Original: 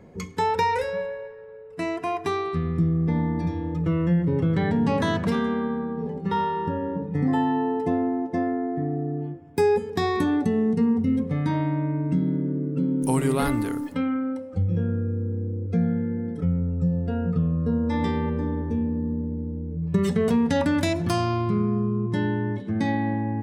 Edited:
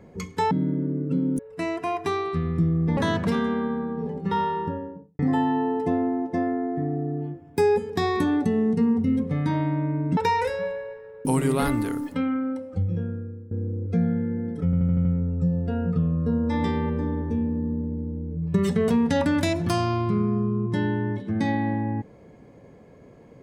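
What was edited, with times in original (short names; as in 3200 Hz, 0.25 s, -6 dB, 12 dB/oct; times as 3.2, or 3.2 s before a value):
0.51–1.59 swap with 12.17–13.05
3.17–4.97 cut
6.5–7.19 studio fade out
14.49–15.31 fade out linear, to -18.5 dB
16.45 stutter 0.08 s, 6 plays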